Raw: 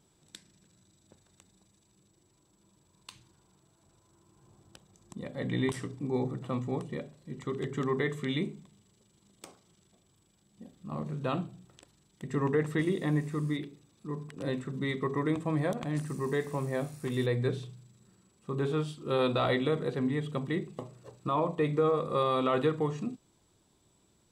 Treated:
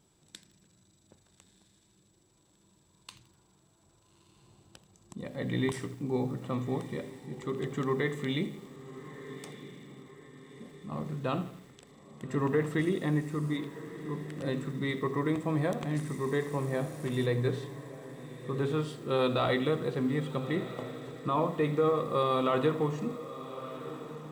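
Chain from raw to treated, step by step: echo that smears into a reverb 1269 ms, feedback 49%, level -13.5 dB; bit-crushed delay 83 ms, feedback 55%, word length 8-bit, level -15 dB

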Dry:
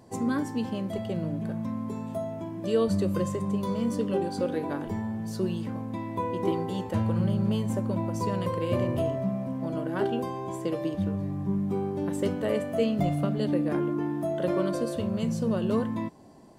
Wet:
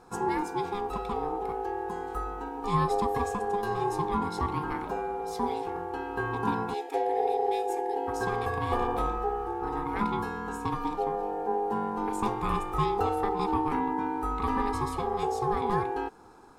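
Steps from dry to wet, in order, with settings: spectral selection erased 6.74–8.08 s, 340–1000 Hz; in parallel at -10 dB: saturation -27 dBFS, distortion -11 dB; on the sum: ring modulator 610 Hz

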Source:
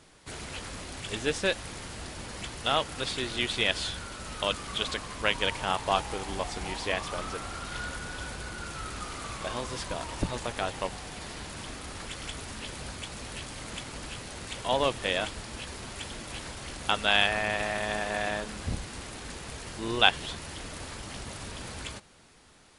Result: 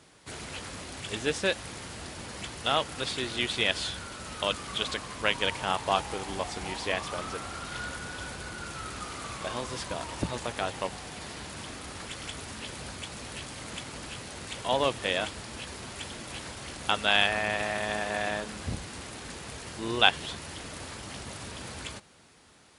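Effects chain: high-pass 67 Hz

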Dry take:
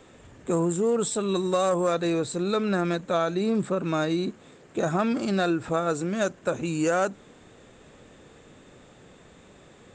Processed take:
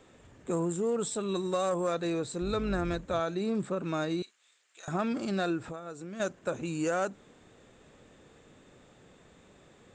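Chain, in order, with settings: 2.41–3.20 s: octave divider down 2 oct, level -4 dB; 4.22–4.88 s: Bessel high-pass 2.9 kHz, order 2; 5.67–6.20 s: compression 5:1, threshold -33 dBFS, peak gain reduction 11.5 dB; trim -6 dB

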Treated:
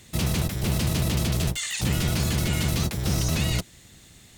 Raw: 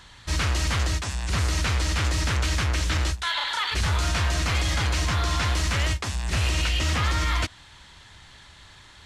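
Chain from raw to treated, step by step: octave divider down 1 oct, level 0 dB; wide varispeed 2.07×; trim -3 dB

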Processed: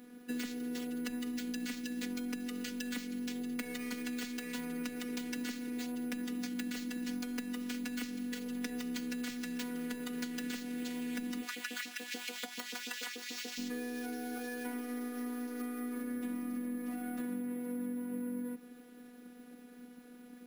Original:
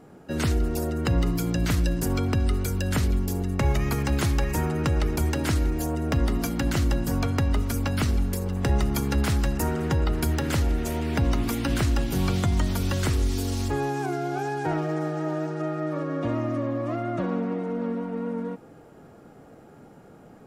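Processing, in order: careless resampling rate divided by 4×, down none, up hold; 11.42–13.58 s: LFO high-pass saw up 6.9 Hz 420–2900 Hz; high-pass 190 Hz 24 dB/octave; high-order bell 770 Hz -12 dB; robot voice 245 Hz; compression, threshold -37 dBFS, peak gain reduction 12 dB; trim +1.5 dB

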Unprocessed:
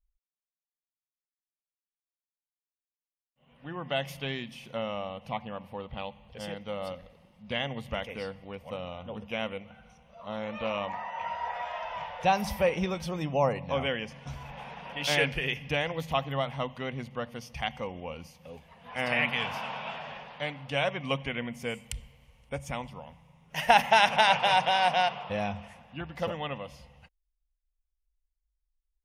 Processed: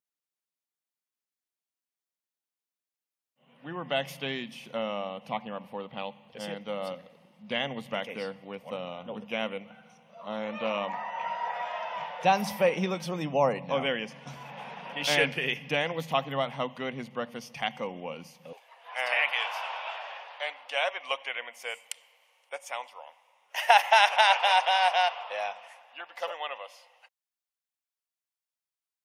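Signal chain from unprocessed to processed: high-pass 160 Hz 24 dB/octave, from 18.53 s 590 Hz; trim +1.5 dB

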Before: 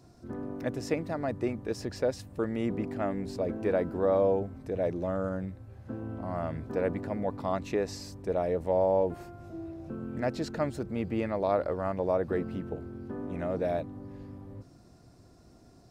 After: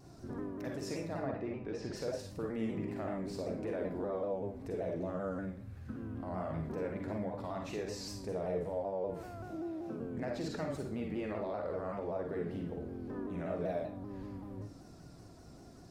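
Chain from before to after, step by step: 1.20–1.92 s: low-pass 2.4 kHz -> 4.9 kHz 12 dB/octave; 5.57–6.23 s: high-order bell 570 Hz -10.5 dB; 9.45–10.01 s: Bessel high-pass 200 Hz, order 2; compression 2:1, threshold -42 dBFS, peak gain reduction 11.5 dB; peak limiter -30.5 dBFS, peak gain reduction 5 dB; reverberation RT60 0.50 s, pre-delay 39 ms, DRR 0 dB; vibrato with a chosen wave saw down 5.2 Hz, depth 100 cents

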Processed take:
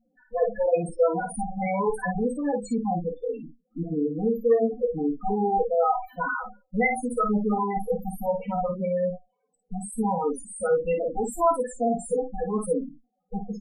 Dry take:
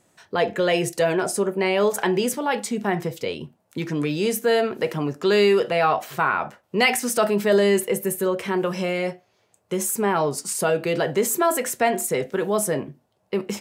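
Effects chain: comb filter that takes the minimum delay 4 ms; loudest bins only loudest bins 4; early reflections 18 ms -10 dB, 52 ms -6.5 dB

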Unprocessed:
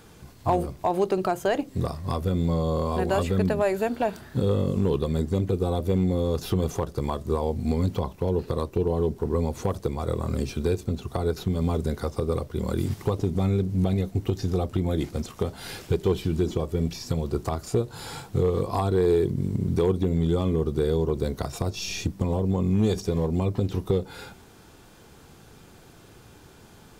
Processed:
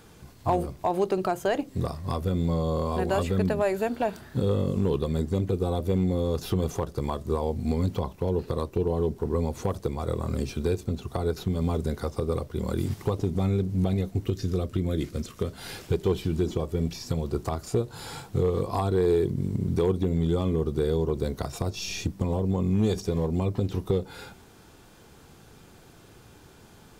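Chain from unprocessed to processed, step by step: 14.25–15.58 s: peaking EQ 810 Hz -14 dB 0.4 oct; trim -1.5 dB

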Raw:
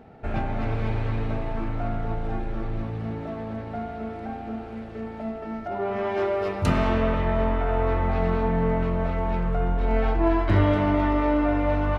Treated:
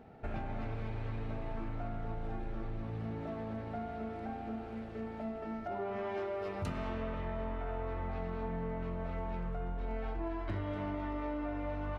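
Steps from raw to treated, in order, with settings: compression, threshold -28 dBFS, peak gain reduction 13 dB; trim -6.5 dB

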